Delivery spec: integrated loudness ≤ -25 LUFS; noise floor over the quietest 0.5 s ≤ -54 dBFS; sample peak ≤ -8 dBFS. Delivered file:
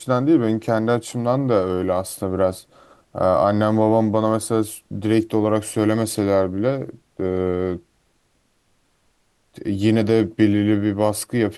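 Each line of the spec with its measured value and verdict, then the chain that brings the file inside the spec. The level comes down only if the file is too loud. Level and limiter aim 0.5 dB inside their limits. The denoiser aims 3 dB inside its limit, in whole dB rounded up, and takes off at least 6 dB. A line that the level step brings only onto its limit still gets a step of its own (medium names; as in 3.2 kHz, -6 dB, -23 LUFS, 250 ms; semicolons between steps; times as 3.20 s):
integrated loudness -20.0 LUFS: fail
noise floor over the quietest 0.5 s -64 dBFS: pass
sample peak -4.0 dBFS: fail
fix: trim -5.5 dB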